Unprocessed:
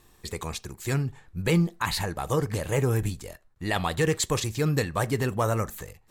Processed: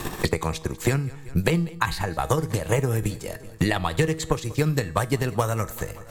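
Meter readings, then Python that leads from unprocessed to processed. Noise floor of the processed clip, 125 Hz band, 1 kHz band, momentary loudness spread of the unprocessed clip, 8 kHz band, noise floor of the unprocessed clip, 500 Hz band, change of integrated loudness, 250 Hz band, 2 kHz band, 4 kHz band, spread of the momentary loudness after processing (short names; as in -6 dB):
-42 dBFS, +2.5 dB, +3.5 dB, 11 LU, 0.0 dB, -60 dBFS, +2.0 dB, +2.0 dB, +2.5 dB, +3.0 dB, +0.5 dB, 5 LU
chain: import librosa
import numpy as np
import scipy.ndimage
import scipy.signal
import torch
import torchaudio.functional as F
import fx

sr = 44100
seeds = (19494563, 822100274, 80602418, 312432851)

p1 = fx.low_shelf(x, sr, hz=64.0, db=9.0)
p2 = fx.transient(p1, sr, attack_db=10, sustain_db=-3)
p3 = fx.comb_fb(p2, sr, f0_hz=160.0, decay_s=0.47, harmonics='all', damping=0.0, mix_pct=50)
p4 = p3 + fx.echo_feedback(p3, sr, ms=190, feedback_pct=42, wet_db=-23.5, dry=0)
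p5 = fx.band_squash(p4, sr, depth_pct=100)
y = p5 * librosa.db_to_amplitude(2.5)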